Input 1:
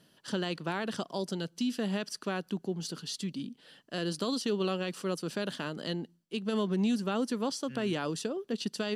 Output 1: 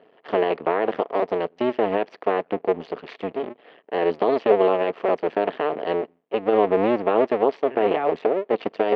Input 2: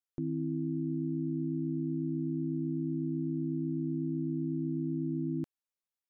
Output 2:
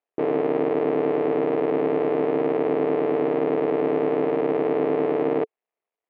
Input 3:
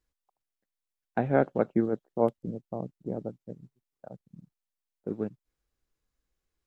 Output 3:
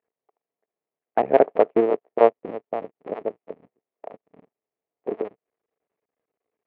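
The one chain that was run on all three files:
cycle switcher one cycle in 2, muted; cabinet simulation 330–2300 Hz, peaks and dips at 440 Hz +9 dB, 680 Hz +7 dB, 1.5 kHz -7 dB; normalise loudness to -23 LUFS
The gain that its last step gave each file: +12.5 dB, +14.0 dB, +6.0 dB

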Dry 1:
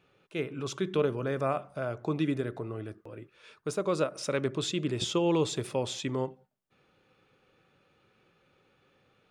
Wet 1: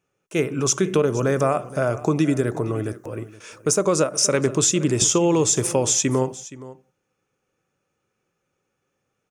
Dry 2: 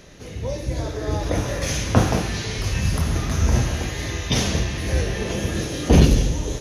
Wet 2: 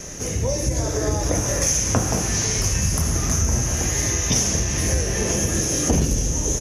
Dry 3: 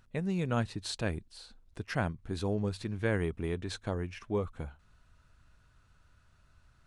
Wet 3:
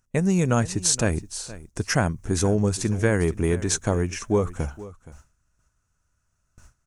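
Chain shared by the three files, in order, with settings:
gate with hold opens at -51 dBFS; resonant high shelf 5 kHz +7.5 dB, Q 3; compression 4:1, threshold -28 dBFS; delay 471 ms -17.5 dB; peak normalisation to -6 dBFS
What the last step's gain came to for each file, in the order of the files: +12.5 dB, +8.5 dB, +12.0 dB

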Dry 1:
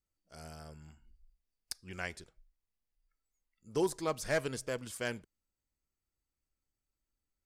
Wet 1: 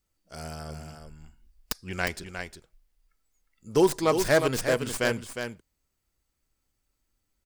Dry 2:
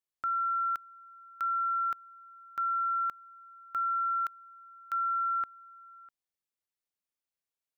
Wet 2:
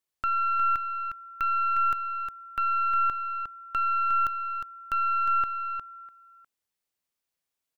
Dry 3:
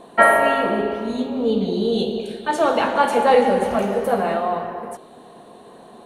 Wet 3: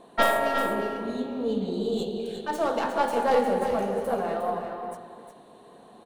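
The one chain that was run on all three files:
tracing distortion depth 0.12 ms; dynamic bell 2.5 kHz, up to -4 dB, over -38 dBFS, Q 1.1; on a send: delay 358 ms -7.5 dB; on the sum: normalise loudness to -27 LUFS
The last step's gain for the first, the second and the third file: +10.5 dB, +5.5 dB, -8.0 dB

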